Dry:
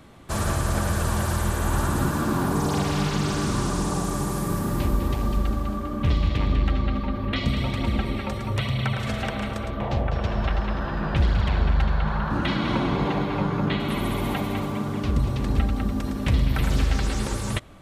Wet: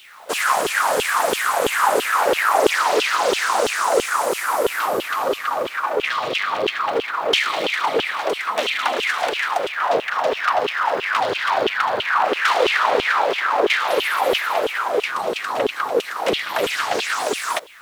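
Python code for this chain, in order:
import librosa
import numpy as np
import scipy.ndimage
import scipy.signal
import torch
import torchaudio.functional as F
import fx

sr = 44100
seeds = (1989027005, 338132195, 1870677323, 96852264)

y = np.abs(x)
y = fx.filter_lfo_highpass(y, sr, shape='saw_down', hz=3.0, low_hz=390.0, high_hz=3200.0, q=6.0)
y = fx.quant_dither(y, sr, seeds[0], bits=10, dither='none')
y = F.gain(torch.from_numpy(y), 6.5).numpy()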